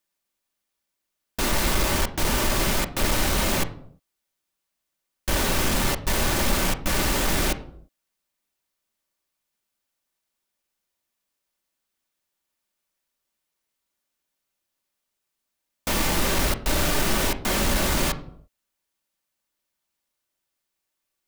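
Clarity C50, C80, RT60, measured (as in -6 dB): 14.0 dB, 17.5 dB, 0.70 s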